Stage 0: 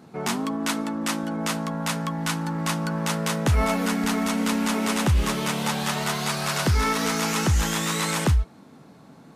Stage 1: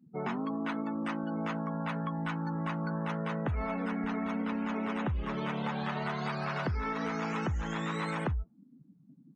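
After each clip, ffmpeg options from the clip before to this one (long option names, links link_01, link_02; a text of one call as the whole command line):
ffmpeg -i in.wav -filter_complex "[0:a]acrossover=split=2600[link_01][link_02];[link_02]acompressor=threshold=-37dB:ratio=4:attack=1:release=60[link_03];[link_01][link_03]amix=inputs=2:normalize=0,afftdn=noise_reduction=36:noise_floor=-36,acompressor=threshold=-26dB:ratio=6,volume=-4dB" out.wav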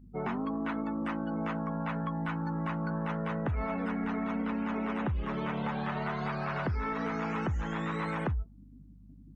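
ffmpeg -i in.wav -filter_complex "[0:a]aeval=exprs='0.1*(cos(1*acos(clip(val(0)/0.1,-1,1)))-cos(1*PI/2))+0.00282*(cos(5*acos(clip(val(0)/0.1,-1,1)))-cos(5*PI/2))':channel_layout=same,acrossover=split=2900[link_01][link_02];[link_02]acompressor=threshold=-58dB:ratio=4:attack=1:release=60[link_03];[link_01][link_03]amix=inputs=2:normalize=0,aeval=exprs='val(0)+0.00224*(sin(2*PI*50*n/s)+sin(2*PI*2*50*n/s)/2+sin(2*PI*3*50*n/s)/3+sin(2*PI*4*50*n/s)/4+sin(2*PI*5*50*n/s)/5)':channel_layout=same" out.wav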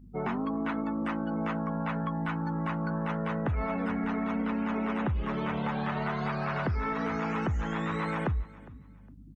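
ffmpeg -i in.wav -af "aecho=1:1:409|818:0.0891|0.0223,volume=2dB" out.wav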